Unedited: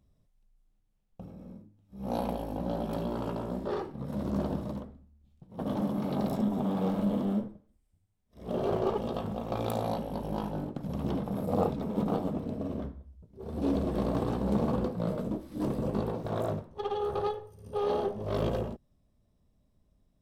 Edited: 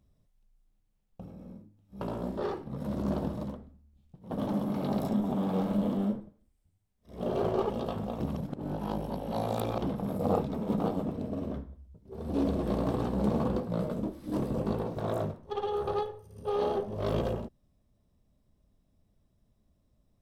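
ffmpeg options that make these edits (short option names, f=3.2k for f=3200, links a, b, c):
-filter_complex "[0:a]asplit=4[a][b][c][d];[a]atrim=end=2.012[e];[b]atrim=start=3.288:end=9.482[f];[c]atrim=start=9.478:end=11.102,asetpts=PTS-STARTPTS,areverse[g];[d]atrim=start=11.098[h];[e][f]acrossfade=d=0.004:c1=hsin:c2=hsin[i];[i][g]acrossfade=d=0.004:c1=hsin:c2=hsin[j];[j][h]acrossfade=d=0.004:c1=hsin:c2=hsin"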